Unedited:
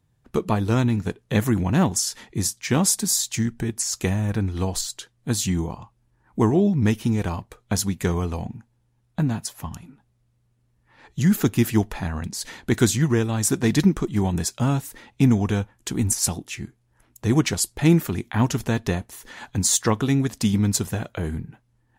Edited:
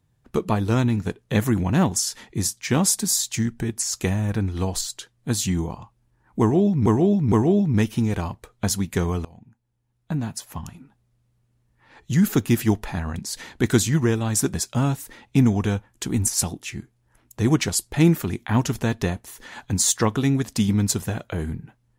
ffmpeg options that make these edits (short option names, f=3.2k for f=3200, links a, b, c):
-filter_complex "[0:a]asplit=5[a][b][c][d][e];[a]atrim=end=6.862[f];[b]atrim=start=6.398:end=6.862[g];[c]atrim=start=6.398:end=8.33,asetpts=PTS-STARTPTS,afade=t=out:st=1.928:d=0.004:c=hsin:silence=0.0749894[h];[d]atrim=start=8.33:end=13.622,asetpts=PTS-STARTPTS,afade=t=in:d=1.41:silence=0.0749894[i];[e]atrim=start=14.388[j];[f][g]acrossfade=d=0.004:c1=hsin:c2=hsin[k];[h][i]concat=n=2:v=0:a=1[l];[k][l]acrossfade=d=0.004:c1=hsin:c2=hsin[m];[m][j]acrossfade=d=0.004:c1=hsin:c2=hsin"